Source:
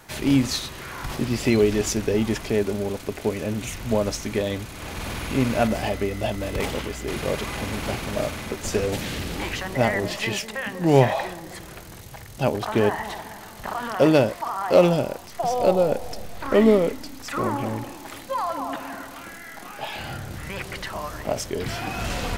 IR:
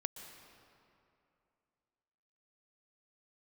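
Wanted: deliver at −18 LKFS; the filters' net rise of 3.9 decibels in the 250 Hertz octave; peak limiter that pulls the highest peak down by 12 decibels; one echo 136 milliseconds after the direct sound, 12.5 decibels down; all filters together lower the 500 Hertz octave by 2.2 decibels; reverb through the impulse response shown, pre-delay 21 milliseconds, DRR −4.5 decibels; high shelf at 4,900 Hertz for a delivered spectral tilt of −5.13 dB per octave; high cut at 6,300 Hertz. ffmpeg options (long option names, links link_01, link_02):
-filter_complex "[0:a]lowpass=6300,equalizer=frequency=250:width_type=o:gain=6,equalizer=frequency=500:width_type=o:gain=-4.5,highshelf=frequency=4900:gain=-3.5,alimiter=limit=-15.5dB:level=0:latency=1,aecho=1:1:136:0.237,asplit=2[link_01][link_02];[1:a]atrim=start_sample=2205,adelay=21[link_03];[link_02][link_03]afir=irnorm=-1:irlink=0,volume=5.5dB[link_04];[link_01][link_04]amix=inputs=2:normalize=0,volume=4dB"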